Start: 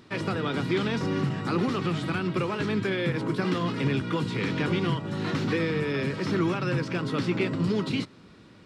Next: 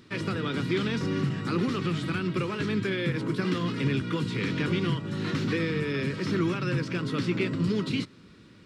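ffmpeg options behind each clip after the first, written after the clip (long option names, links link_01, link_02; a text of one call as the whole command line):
ffmpeg -i in.wav -af "equalizer=frequency=750:width_type=o:width=0.87:gain=-9.5" out.wav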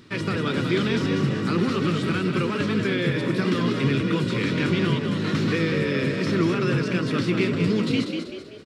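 ffmpeg -i in.wav -filter_complex "[0:a]asplit=6[link_01][link_02][link_03][link_04][link_05][link_06];[link_02]adelay=192,afreqshift=52,volume=-6dB[link_07];[link_03]adelay=384,afreqshift=104,volume=-13.1dB[link_08];[link_04]adelay=576,afreqshift=156,volume=-20.3dB[link_09];[link_05]adelay=768,afreqshift=208,volume=-27.4dB[link_10];[link_06]adelay=960,afreqshift=260,volume=-34.5dB[link_11];[link_01][link_07][link_08][link_09][link_10][link_11]amix=inputs=6:normalize=0,volume=4dB" out.wav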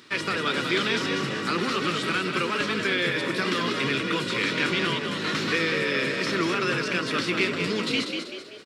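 ffmpeg -i in.wav -af "highpass=frequency=930:poles=1,volume=5dB" out.wav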